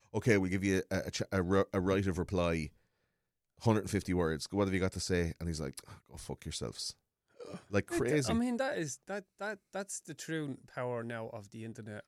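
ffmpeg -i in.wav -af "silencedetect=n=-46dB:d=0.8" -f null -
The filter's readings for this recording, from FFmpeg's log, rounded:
silence_start: 2.68
silence_end: 3.62 | silence_duration: 0.93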